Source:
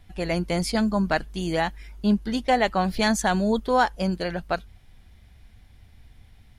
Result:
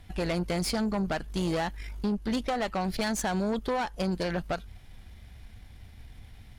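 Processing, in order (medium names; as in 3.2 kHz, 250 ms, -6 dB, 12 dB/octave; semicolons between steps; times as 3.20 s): compression 12:1, threshold -26 dBFS, peak gain reduction 12 dB; valve stage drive 30 dB, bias 0.55; trim +6 dB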